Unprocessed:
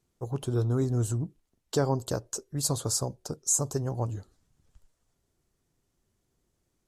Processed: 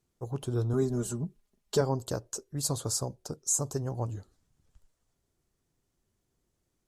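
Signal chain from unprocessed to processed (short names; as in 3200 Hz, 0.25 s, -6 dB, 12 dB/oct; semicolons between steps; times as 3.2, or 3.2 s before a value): 0.73–1.81 comb 4.9 ms, depth 91%; gain -2.5 dB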